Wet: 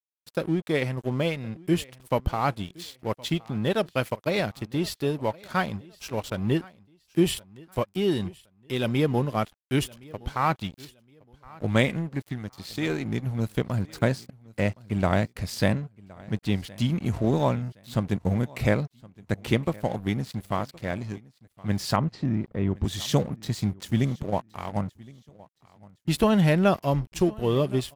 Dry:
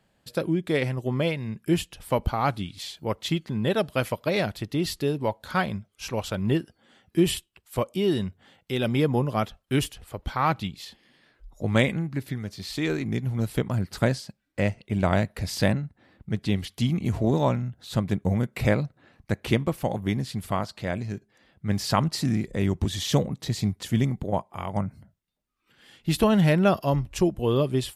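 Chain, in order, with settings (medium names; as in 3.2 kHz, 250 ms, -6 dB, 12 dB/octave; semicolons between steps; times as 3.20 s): crossover distortion -42 dBFS; 21.96–22.84 s: tape spacing loss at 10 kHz 32 dB; on a send: feedback delay 1067 ms, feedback 29%, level -23 dB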